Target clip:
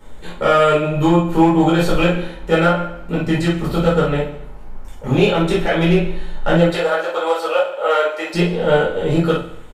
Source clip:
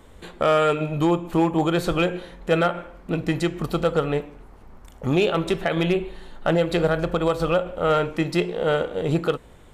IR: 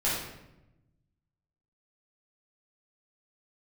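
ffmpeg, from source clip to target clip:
-filter_complex "[0:a]asettb=1/sr,asplit=3[link_01][link_02][link_03];[link_01]atrim=end=6.684[link_04];[link_02]atrim=start=6.68:end=8.34,asetpts=PTS-STARTPTS,afade=type=in:duration=0.004:curve=qsin,afade=type=out:start_time=1.656:duration=0.004:curve=qsin,highpass=frequency=460:width=0.5412,highpass=frequency=460:width=1.3066[link_05];[link_03]atrim=start=8.336[link_06];[link_04][link_05]acrossfade=duration=0.004:curve1=hsin:curve2=qsin[link_07];[link_07][link_06]acrossfade=duration=0.004:curve1=qsin:curve2=hsin,aecho=1:1:70|140|210|280|350|420:0.224|0.121|0.0653|0.0353|0.019|0.0103[link_08];[1:a]atrim=start_sample=2205,atrim=end_sample=3087[link_09];[link_08][link_09]afir=irnorm=-1:irlink=0,volume=-2dB"

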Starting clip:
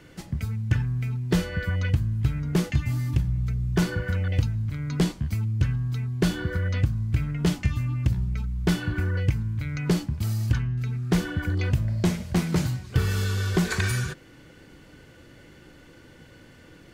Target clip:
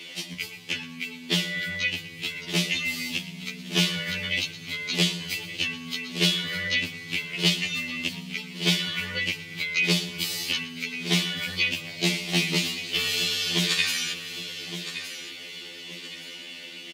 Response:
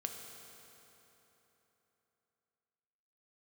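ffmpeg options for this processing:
-filter_complex "[0:a]aexciter=amount=13:drive=8.3:freq=2400,acrossover=split=190 3100:gain=0.0891 1 0.0794[link_01][link_02][link_03];[link_01][link_02][link_03]amix=inputs=3:normalize=0,dynaudnorm=framelen=250:gausssize=21:maxgain=11.5dB,aecho=1:1:1167|2334|3501:0.158|0.0412|0.0107,asplit=2[link_04][link_05];[1:a]atrim=start_sample=2205,adelay=117[link_06];[link_05][link_06]afir=irnorm=-1:irlink=0,volume=-15dB[link_07];[link_04][link_07]amix=inputs=2:normalize=0,acompressor=threshold=-37dB:ratio=1.5,highpass=frequency=110:width=0.5412,highpass=frequency=110:width=1.3066,afftfilt=real='re*2*eq(mod(b,4),0)':imag='im*2*eq(mod(b,4),0)':win_size=2048:overlap=0.75,volume=5dB"

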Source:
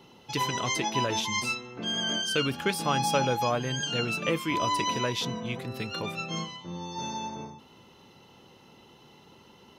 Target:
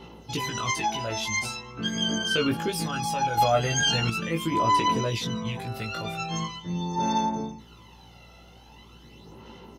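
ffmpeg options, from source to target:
ffmpeg -i in.wav -filter_complex "[0:a]alimiter=limit=-23.5dB:level=0:latency=1:release=61,aphaser=in_gain=1:out_gain=1:delay=1.5:decay=0.57:speed=0.42:type=sinusoidal,aeval=exprs='val(0)+0.00141*(sin(2*PI*60*n/s)+sin(2*PI*2*60*n/s)/2+sin(2*PI*3*60*n/s)/3+sin(2*PI*4*60*n/s)/4+sin(2*PI*5*60*n/s)/5)':channel_layout=same,asplit=2[link_01][link_02];[link_02]adelay=18,volume=-3dB[link_03];[link_01][link_03]amix=inputs=2:normalize=0,asettb=1/sr,asplit=3[link_04][link_05][link_06];[link_04]atrim=end=3.374[link_07];[link_05]atrim=start=3.37:end=4.1,asetpts=PTS-STARTPTS,afade=type=in:duration=0.004:curve=qsin,afade=type=out:start_time=0.726:duration=0.004:curve=qsin,acontrast=66[link_08];[link_06]atrim=start=4.096[link_09];[link_07][link_08]acrossfade=duration=0.004:curve1=hsin:curve2=qsin[link_10];[link_10][link_09]acrossfade=duration=0.004:curve1=qsin:curve2=hsin" out.wav

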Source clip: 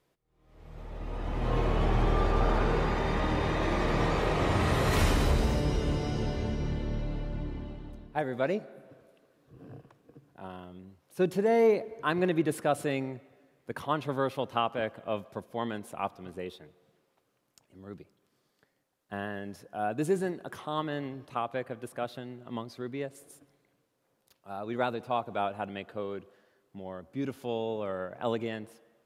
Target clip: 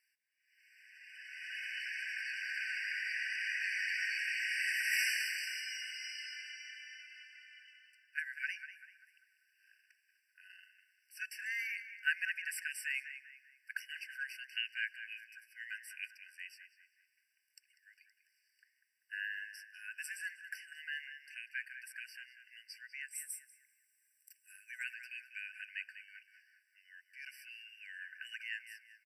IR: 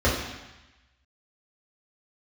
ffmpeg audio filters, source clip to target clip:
-filter_complex "[0:a]asettb=1/sr,asplit=3[link_01][link_02][link_03];[link_01]atrim=end=23.084[link_04];[link_02]atrim=start=23.08:end=24.84,asetpts=PTS-STARTPTS,afade=type=in:duration=0.004:curve=qsin,afade=type=out:start_time=1.756:duration=0.004:curve=qsin,highshelf=frequency=5700:width_type=q:width=3:gain=8[link_05];[link_03]atrim=start=24.836[link_06];[link_04][link_05]acrossfade=duration=0.004:curve1=hsin:curve2=qsin[link_07];[link_07][link_06]acrossfade=duration=0.004:curve1=qsin:curve2=hsin,asplit=2[link_08][link_09];[link_09]adelay=195,lowpass=frequency=2100:poles=1,volume=-8dB,asplit=2[link_10][link_11];[link_11]adelay=195,lowpass=frequency=2100:poles=1,volume=0.52,asplit=2[link_12][link_13];[link_13]adelay=195,lowpass=frequency=2100:poles=1,volume=0.52,asplit=2[link_14][link_15];[link_15]adelay=195,lowpass=frequency=2100:poles=1,volume=0.52,asplit=2[link_16][link_17];[link_17]adelay=195,lowpass=frequency=2100:poles=1,volume=0.52,asplit=2[link_18][link_19];[link_19]adelay=195,lowpass=frequency=2100:poles=1,volume=0.52[link_20];[link_10][link_12][link_14][link_16][link_18][link_20]amix=inputs=6:normalize=0[link_21];[link_08][link_21]amix=inputs=2:normalize=0,afftfilt=real='re*eq(mod(floor(b*sr/1024/1500),2),1)':imag='im*eq(mod(floor(b*sr/1024/1500),2),1)':win_size=1024:overlap=0.75,volume=3dB"

